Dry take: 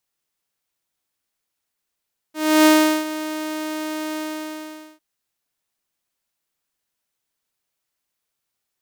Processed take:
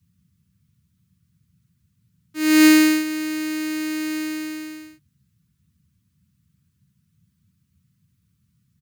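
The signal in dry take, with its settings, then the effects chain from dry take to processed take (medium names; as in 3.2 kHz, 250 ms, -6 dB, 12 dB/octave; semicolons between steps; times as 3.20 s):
ADSR saw 310 Hz, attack 313 ms, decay 386 ms, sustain -15.5 dB, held 1.83 s, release 823 ms -7 dBFS
high-order bell 670 Hz -14.5 dB 1 oct; comb 6.9 ms, depth 56%; band noise 69–190 Hz -65 dBFS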